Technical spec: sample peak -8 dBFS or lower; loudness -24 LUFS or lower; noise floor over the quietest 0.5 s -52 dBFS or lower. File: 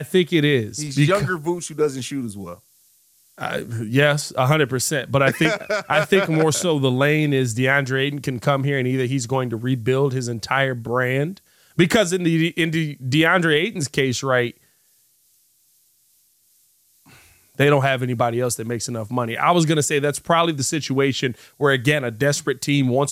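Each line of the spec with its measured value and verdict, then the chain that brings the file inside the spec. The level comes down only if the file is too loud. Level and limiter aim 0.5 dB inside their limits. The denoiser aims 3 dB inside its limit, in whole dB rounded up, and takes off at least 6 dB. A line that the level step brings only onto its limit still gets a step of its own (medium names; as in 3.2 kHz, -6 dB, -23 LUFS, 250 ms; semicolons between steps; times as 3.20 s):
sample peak -4.5 dBFS: fail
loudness -20.0 LUFS: fail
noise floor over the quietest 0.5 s -60 dBFS: pass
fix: trim -4.5 dB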